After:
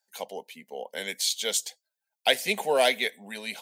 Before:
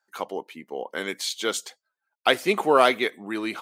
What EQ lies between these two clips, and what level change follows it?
dynamic EQ 1700 Hz, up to +4 dB, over -35 dBFS, Q 1.9; tilt +2 dB/oct; fixed phaser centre 330 Hz, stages 6; -1.0 dB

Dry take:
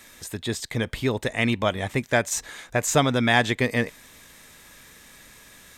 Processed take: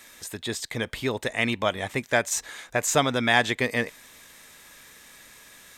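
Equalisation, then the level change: low shelf 270 Hz -8 dB; 0.0 dB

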